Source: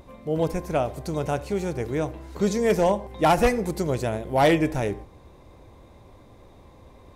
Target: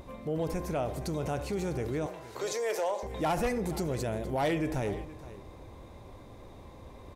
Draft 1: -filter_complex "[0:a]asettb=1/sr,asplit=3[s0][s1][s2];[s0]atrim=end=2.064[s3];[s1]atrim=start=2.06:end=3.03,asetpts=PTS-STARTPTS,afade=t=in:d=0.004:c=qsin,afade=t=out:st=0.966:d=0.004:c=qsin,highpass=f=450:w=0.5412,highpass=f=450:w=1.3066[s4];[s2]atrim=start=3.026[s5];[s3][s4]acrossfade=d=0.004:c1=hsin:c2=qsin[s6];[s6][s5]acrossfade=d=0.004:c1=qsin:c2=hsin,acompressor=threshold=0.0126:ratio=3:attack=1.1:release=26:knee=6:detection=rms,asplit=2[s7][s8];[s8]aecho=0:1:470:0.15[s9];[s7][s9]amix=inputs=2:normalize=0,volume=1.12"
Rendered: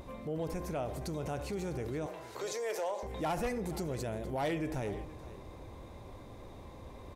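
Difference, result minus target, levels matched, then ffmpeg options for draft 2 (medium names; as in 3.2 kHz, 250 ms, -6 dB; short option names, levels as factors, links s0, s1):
compression: peak gain reduction +4.5 dB
-filter_complex "[0:a]asettb=1/sr,asplit=3[s0][s1][s2];[s0]atrim=end=2.064[s3];[s1]atrim=start=2.06:end=3.03,asetpts=PTS-STARTPTS,afade=t=in:d=0.004:c=qsin,afade=t=out:st=0.966:d=0.004:c=qsin,highpass=f=450:w=0.5412,highpass=f=450:w=1.3066[s4];[s2]atrim=start=3.026[s5];[s3][s4]acrossfade=d=0.004:c1=hsin:c2=qsin[s6];[s6][s5]acrossfade=d=0.004:c1=qsin:c2=hsin,acompressor=threshold=0.0282:ratio=3:attack=1.1:release=26:knee=6:detection=rms,asplit=2[s7][s8];[s8]aecho=0:1:470:0.15[s9];[s7][s9]amix=inputs=2:normalize=0,volume=1.12"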